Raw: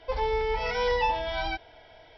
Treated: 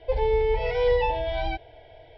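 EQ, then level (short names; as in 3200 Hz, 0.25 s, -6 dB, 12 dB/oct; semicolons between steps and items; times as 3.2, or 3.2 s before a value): air absorption 330 m; bell 120 Hz +7 dB 1 oct; fixed phaser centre 500 Hz, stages 4; +6.5 dB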